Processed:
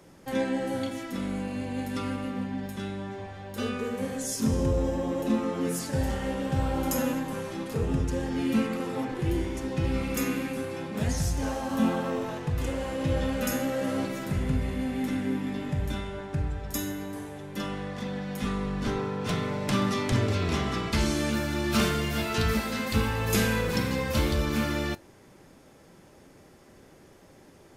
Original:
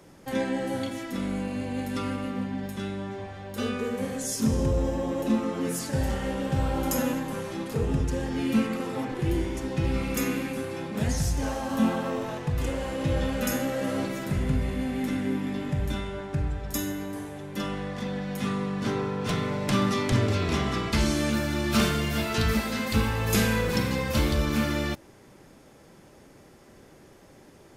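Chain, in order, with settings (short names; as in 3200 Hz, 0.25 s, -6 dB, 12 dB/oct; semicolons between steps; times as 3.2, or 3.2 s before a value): 18.41–18.99 octaver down 2 oct, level -5 dB; resonator 88 Hz, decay 0.16 s, mix 40%; gain +1 dB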